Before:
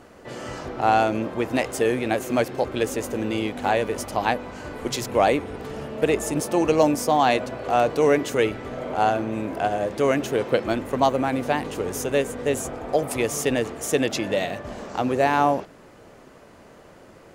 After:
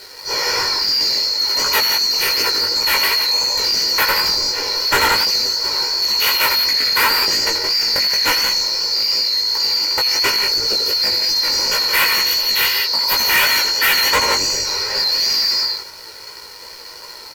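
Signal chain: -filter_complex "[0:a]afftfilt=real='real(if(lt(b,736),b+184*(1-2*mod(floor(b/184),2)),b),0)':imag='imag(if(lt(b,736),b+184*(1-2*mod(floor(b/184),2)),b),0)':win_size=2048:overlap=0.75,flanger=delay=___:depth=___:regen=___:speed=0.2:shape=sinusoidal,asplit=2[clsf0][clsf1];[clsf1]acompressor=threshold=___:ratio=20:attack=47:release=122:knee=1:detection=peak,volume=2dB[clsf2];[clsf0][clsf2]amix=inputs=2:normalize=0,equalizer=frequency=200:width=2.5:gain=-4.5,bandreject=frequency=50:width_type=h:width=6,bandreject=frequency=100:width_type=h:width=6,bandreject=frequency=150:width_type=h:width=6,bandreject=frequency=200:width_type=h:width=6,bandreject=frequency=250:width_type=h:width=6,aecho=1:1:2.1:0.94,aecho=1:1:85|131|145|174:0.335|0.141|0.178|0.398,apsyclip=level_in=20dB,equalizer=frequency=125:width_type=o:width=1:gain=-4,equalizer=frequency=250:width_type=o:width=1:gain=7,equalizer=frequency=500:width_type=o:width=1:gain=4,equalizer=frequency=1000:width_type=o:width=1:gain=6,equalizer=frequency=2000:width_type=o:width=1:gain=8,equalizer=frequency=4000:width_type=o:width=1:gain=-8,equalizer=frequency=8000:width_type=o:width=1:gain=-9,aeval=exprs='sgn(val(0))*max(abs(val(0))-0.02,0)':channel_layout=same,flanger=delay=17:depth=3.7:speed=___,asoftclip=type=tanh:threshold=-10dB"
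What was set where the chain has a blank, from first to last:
10, 2.9, -33, -34dB, 2.8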